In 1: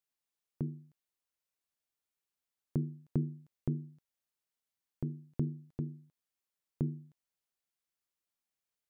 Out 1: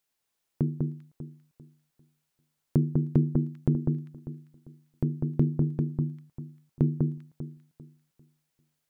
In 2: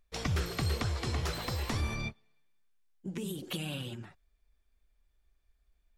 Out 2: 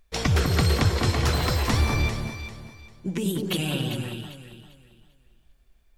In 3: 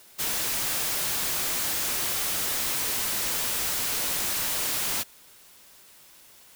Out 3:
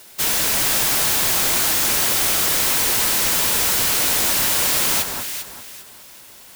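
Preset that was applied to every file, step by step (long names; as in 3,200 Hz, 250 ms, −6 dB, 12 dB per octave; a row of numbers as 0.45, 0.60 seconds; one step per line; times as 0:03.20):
notch filter 1,200 Hz, Q 28
delay that swaps between a low-pass and a high-pass 198 ms, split 1,600 Hz, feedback 53%, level −3 dB
normalise the peak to −9 dBFS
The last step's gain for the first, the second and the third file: +9.0, +9.5, +8.5 decibels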